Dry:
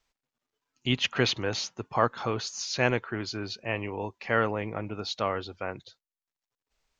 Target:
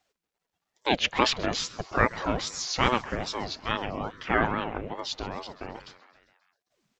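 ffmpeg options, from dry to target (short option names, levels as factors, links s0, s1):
-filter_complex "[0:a]asplit=7[s0][s1][s2][s3][s4][s5][s6];[s1]adelay=133,afreqshift=150,volume=0.1[s7];[s2]adelay=266,afreqshift=300,volume=0.0638[s8];[s3]adelay=399,afreqshift=450,volume=0.0407[s9];[s4]adelay=532,afreqshift=600,volume=0.0263[s10];[s5]adelay=665,afreqshift=750,volume=0.0168[s11];[s6]adelay=798,afreqshift=900,volume=0.0107[s12];[s0][s7][s8][s9][s10][s11][s12]amix=inputs=7:normalize=0,asettb=1/sr,asplit=3[s13][s14][s15];[s13]atrim=end=4.774[s16];[s14]atrim=start=4.77:end=5.75,asetpts=PTS-STARTPTS,afade=t=in:d=0.004:c=qsin,afade=t=out:st=0.976:d=0.004:c=qsin,acrossover=split=360|3000[s17][s18][s19];[s18]acompressor=threshold=0.00447:ratio=2.5[s20];[s17][s20][s19]amix=inputs=3:normalize=0[s21];[s15]atrim=start=5.746[s22];[s16][s21]acrossfade=d=0.004:c1=hsin:c2=qsin[s23];[s23][s22]acrossfade=d=0.004:c1=qsin:c2=hsin,aeval=exprs='val(0)*sin(2*PI*460*n/s+460*0.65/2.4*sin(2*PI*2.4*n/s))':c=same,volume=1.68"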